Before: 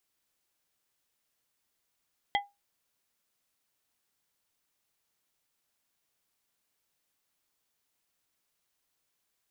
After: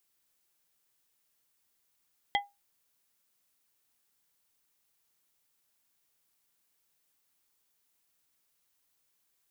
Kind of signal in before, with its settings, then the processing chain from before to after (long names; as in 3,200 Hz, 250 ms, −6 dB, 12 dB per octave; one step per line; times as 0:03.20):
struck glass plate, lowest mode 810 Hz, modes 3, decay 0.21 s, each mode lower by 2 dB, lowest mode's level −22 dB
high-shelf EQ 8,100 Hz +6.5 dB
notch filter 650 Hz, Q 12